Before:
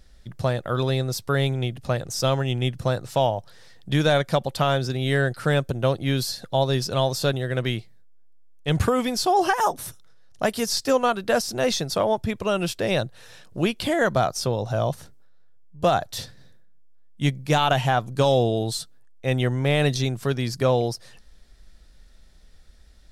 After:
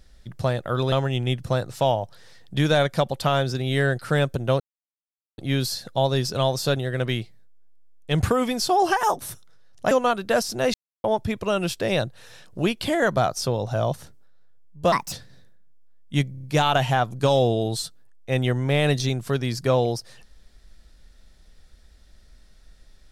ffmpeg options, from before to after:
-filter_complex "[0:a]asplit=12[s0][s1][s2][s3][s4][s5][s6][s7][s8][s9][s10][s11];[s0]atrim=end=0.922[s12];[s1]atrim=start=2.268:end=5.95,asetpts=PTS-STARTPTS,afade=t=out:st=3.678:d=0.004:c=hsin,apad=pad_dur=0.78[s13];[s2]atrim=start=5.95:end=10.482,asetpts=PTS-STARTPTS,afade=t=in:d=0.004:c=hsin[s14];[s3]atrim=start=10.898:end=11.73,asetpts=PTS-STARTPTS,afade=t=out:st=0.828:d=0.004:c=hsin[s15];[s4]atrim=start=11.73:end=12.03,asetpts=PTS-STARTPTS,volume=0[s16];[s5]atrim=start=12.03:end=15.914,asetpts=PTS-STARTPTS,afade=t=in:d=0.004:c=hsin[s17];[s6]atrim=start=15.91:end=16.2,asetpts=PTS-STARTPTS,asetrate=63063,aresample=44100,atrim=end_sample=8943,asetpts=PTS-STARTPTS[s18];[s7]atrim=start=16.196:end=17.422[s19];[s8]atrim=start=17.388:end=17.422[s20];[s9]atrim=start=17.388:end=17.422[s21];[s10]atrim=start=17.388:end=17.422[s22];[s11]atrim=start=17.388[s23];[s13][s14]concat=n=2:v=0:a=1[s24];[s12][s24]acrossfade=d=0.004:c1=hsin:c2=hsin[s25];[s15][s16][s17]concat=n=3:v=0:a=1[s26];[s25][s26]acrossfade=d=0.004:c1=hsin:c2=hsin[s27];[s27][s18]acrossfade=d=0.004:c1=hsin:c2=hsin[s28];[s28][s19]acrossfade=d=0.004:c1=hsin:c2=hsin[s29];[s29][s20]acrossfade=d=0.004:c1=hsin:c2=hsin[s30];[s30][s21]acrossfade=d=0.004:c1=hsin:c2=hsin[s31];[s31][s22]acrossfade=d=0.004:c1=hsin:c2=hsin[s32];[s32][s23]acrossfade=d=0.004:c1=hsin:c2=hsin"

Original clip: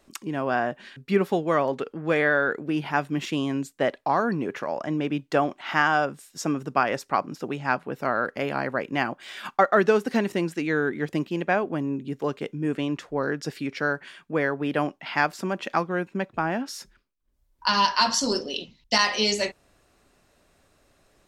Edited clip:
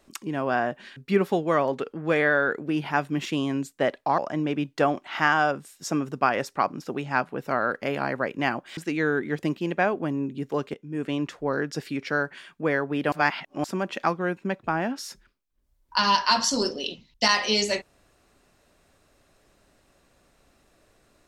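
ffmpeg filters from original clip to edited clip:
-filter_complex "[0:a]asplit=6[s0][s1][s2][s3][s4][s5];[s0]atrim=end=4.182[s6];[s1]atrim=start=4.718:end=9.312[s7];[s2]atrim=start=10.468:end=12.44,asetpts=PTS-STARTPTS,afade=t=out:st=1.968:d=0.004:c=hsin:silence=0.149624[s8];[s3]atrim=start=12.44:end=14.822,asetpts=PTS-STARTPTS,afade=t=in:d=0.41:silence=0.149624[s9];[s4]atrim=start=14.818:end=15.342,asetpts=PTS-STARTPTS,areverse[s10];[s5]atrim=start=15.338[s11];[s6][s7]acrossfade=d=0.004:c1=hsin:c2=hsin[s12];[s8][s9]concat=n=2:v=0:a=1[s13];[s12][s13]acrossfade=d=0.004:c1=hsin:c2=hsin[s14];[s14][s10]acrossfade=d=0.004:c1=hsin:c2=hsin[s15];[s15][s11]acrossfade=d=0.004:c1=hsin:c2=hsin"

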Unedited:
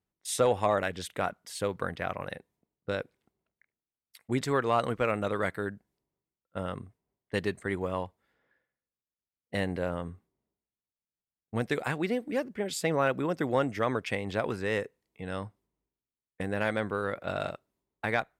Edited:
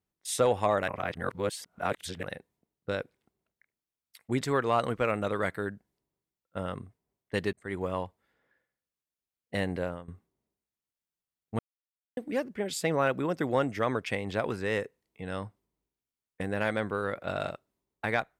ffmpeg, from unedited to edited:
-filter_complex "[0:a]asplit=7[s0][s1][s2][s3][s4][s5][s6];[s0]atrim=end=0.882[s7];[s1]atrim=start=0.878:end=2.232,asetpts=PTS-STARTPTS,areverse[s8];[s2]atrim=start=2.228:end=7.53,asetpts=PTS-STARTPTS,afade=t=out:st=5.298:d=0.004:c=hsin[s9];[s3]atrim=start=7.53:end=10.08,asetpts=PTS-STARTPTS,afade=t=in:d=0.28,afade=t=out:st=2.28:d=0.27:silence=0.11885[s10];[s4]atrim=start=10.08:end=11.59,asetpts=PTS-STARTPTS,afade=t=in:d=0.004:c=hsin:silence=0.11885,afade=t=out:st=1.506:d=0.004:c=hsin[s11];[s5]atrim=start=11.59:end=12.17,asetpts=PTS-STARTPTS,volume=0[s12];[s6]atrim=start=12.17,asetpts=PTS-STARTPTS,afade=t=in:d=0.004:c=hsin[s13];[s7][s8]acrossfade=d=0.004:c1=hsin:c2=hsin[s14];[s9][s10][s11][s12][s13]concat=n=5:v=0:a=1[s15];[s14][s15]acrossfade=d=0.004:c1=hsin:c2=hsin"

